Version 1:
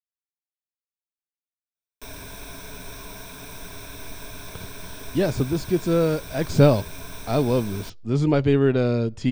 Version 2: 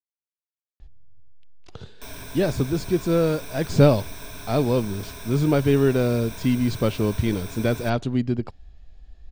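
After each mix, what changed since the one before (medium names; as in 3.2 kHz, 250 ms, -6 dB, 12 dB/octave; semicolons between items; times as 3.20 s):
speech: entry -2.80 s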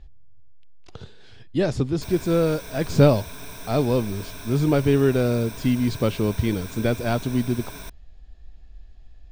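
speech: entry -0.80 s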